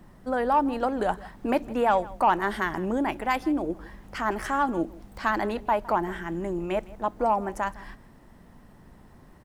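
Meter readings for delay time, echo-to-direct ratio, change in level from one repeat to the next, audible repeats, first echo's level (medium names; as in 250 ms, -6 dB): 160 ms, -20.5 dB, no regular repeats, 1, -20.5 dB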